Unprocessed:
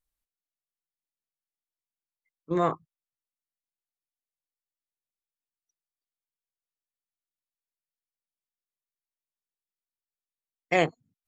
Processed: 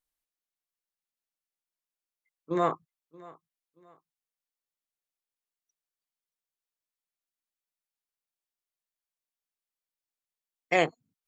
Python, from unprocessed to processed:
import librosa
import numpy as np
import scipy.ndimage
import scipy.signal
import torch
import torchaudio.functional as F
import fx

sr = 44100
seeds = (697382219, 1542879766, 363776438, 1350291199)

y = fx.low_shelf(x, sr, hz=160.0, db=-10.5)
y = fx.echo_feedback(y, sr, ms=628, feedback_pct=32, wet_db=-22)